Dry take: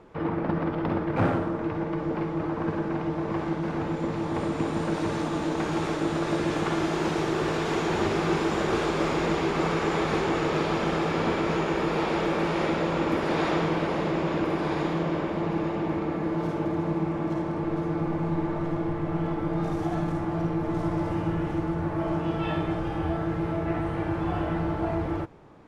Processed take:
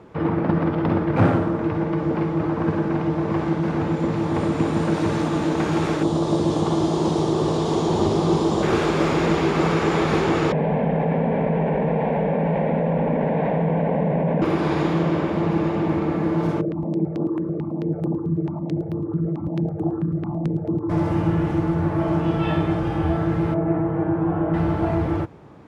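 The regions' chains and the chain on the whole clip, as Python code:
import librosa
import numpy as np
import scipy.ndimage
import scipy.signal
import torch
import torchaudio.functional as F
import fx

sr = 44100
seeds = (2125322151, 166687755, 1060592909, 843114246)

y = fx.chain(x, sr, fx.band_shelf(hz=1900.0, db=-12.5, octaves=1.2),
    fx.resample_bad(factor=2, down='none', up='filtered'), at=(6.03, 8.63))
y = fx.chain(y, sr, fx.lowpass(hz=1900.0, slope=24),
    fx.fixed_phaser(hz=340.0, stages=6),
    fx.env_flatten(amount_pct=100), at=(10.52, 14.42))
y = fx.chain(y, sr, fx.envelope_sharpen(power=2.0),
    fx.highpass(hz=130.0, slope=12),
    fx.phaser_held(hz=9.1, low_hz=250.0, high_hz=7400.0), at=(16.61, 20.9))
y = fx.chain(y, sr, fx.lowpass(hz=1200.0, slope=12),
    fx.low_shelf(hz=100.0, db=-9.5),
    fx.comb(ms=6.3, depth=0.39), at=(23.54, 24.54))
y = scipy.signal.sosfilt(scipy.signal.butter(2, 74.0, 'highpass', fs=sr, output='sos'), y)
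y = fx.low_shelf(y, sr, hz=230.0, db=6.5)
y = F.gain(torch.from_numpy(y), 4.0).numpy()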